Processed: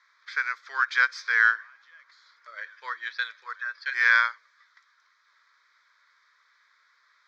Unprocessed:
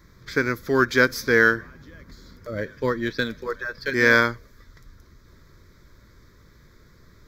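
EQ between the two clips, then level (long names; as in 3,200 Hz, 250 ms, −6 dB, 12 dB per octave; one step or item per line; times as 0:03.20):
high-pass filter 1,100 Hz 24 dB per octave
low-pass filter 8,400 Hz 12 dB per octave
high-frequency loss of the air 150 metres
0.0 dB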